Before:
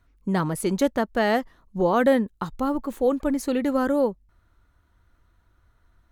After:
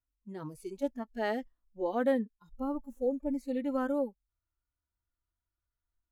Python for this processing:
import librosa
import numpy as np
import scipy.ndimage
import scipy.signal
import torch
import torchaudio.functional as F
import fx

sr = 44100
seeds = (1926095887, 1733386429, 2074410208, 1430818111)

y = fx.hpss(x, sr, part='percussive', gain_db=-16)
y = fx.noise_reduce_blind(y, sr, reduce_db=17)
y = y * librosa.db_to_amplitude(-8.5)